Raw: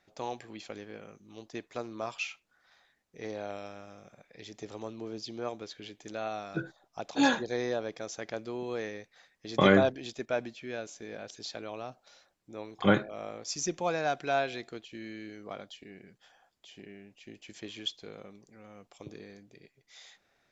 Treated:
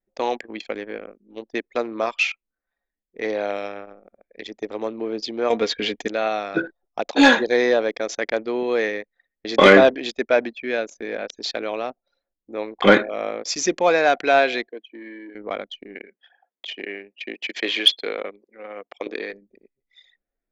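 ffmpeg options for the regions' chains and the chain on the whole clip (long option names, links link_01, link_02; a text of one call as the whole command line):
ffmpeg -i in.wav -filter_complex "[0:a]asettb=1/sr,asplit=3[link_01][link_02][link_03];[link_01]atrim=end=5.504[link_04];[link_02]atrim=start=5.5:end=6.08,asetpts=PTS-STARTPTS,afade=type=in:duration=0.004:curve=qsin,afade=type=out:start_time=0.576:duration=0.004:curve=qsin,equalizer=frequency=74:width_type=o:width=0.92:gain=14,aecho=1:1:4.3:0.45,atrim=end_sample=25578,acontrast=74[link_05];[link_03]atrim=start=6.076[link_06];[link_04][link_05]acrossfade=duration=0.004:curve1=hsin:curve2=qsin[link_07];[link_07][link_06]acrossfade=duration=0.004:curve1=qsin:curve2=hsin,asettb=1/sr,asplit=3[link_08][link_09][link_10];[link_08]atrim=end=14.674[link_11];[link_09]atrim=start=14.67:end=15.35,asetpts=PTS-STARTPTS,afade=type=in:duration=0.004:curve=qsin,afade=type=out:start_time=0.676:duration=0.004:curve=qsin,aeval=exprs='(tanh(70.8*val(0)+0.05)-tanh(0.05))/70.8':channel_layout=same,asuperstop=centerf=1300:order=12:qfactor=3.2,highpass=frequency=250:width=0.5412,highpass=frequency=250:width=1.3066,equalizer=frequency=370:width_type=q:width=4:gain=-5,equalizer=frequency=850:width_type=q:width=4:gain=-7,equalizer=frequency=1600:width_type=q:width=4:gain=4,equalizer=frequency=2700:width_type=q:width=4:gain=-3,equalizer=frequency=4600:width_type=q:width=4:gain=-7,lowpass=frequency=6600:width=0.5412,lowpass=frequency=6600:width=1.3066[link_12];[link_10]atrim=start=15.346[link_13];[link_11][link_12]acrossfade=duration=0.004:curve1=hsin:curve2=qsin[link_14];[link_14][link_13]acrossfade=duration=0.004:curve1=qsin:curve2=hsin,asettb=1/sr,asplit=3[link_15][link_16][link_17];[link_15]atrim=end=15.954[link_18];[link_16]atrim=start=15.95:end=19.33,asetpts=PTS-STARTPTS,afade=type=in:duration=0.004:curve=qsin,afade=type=out:start_time=3.376:duration=0.004:curve=qsin,acontrast=36,highpass=330,lowpass=4100,highshelf=frequency=2100:gain=5.5[link_19];[link_17]atrim=start=19.326[link_20];[link_18][link_19]acrossfade=duration=0.004:curve1=hsin:curve2=qsin[link_21];[link_21][link_20]acrossfade=duration=0.004:curve1=qsin:curve2=hsin,anlmdn=0.0398,equalizer=frequency=125:width_type=o:width=1:gain=-12,equalizer=frequency=250:width_type=o:width=1:gain=7,equalizer=frequency=500:width_type=o:width=1:gain=8,equalizer=frequency=1000:width_type=o:width=1:gain=3,equalizer=frequency=2000:width_type=o:width=1:gain=11,equalizer=frequency=4000:width_type=o:width=1:gain=6,acontrast=59,volume=-1dB" out.wav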